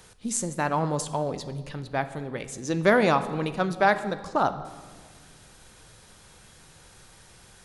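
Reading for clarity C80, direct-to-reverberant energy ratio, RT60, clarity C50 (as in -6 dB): 15.0 dB, 10.5 dB, 1.7 s, 13.0 dB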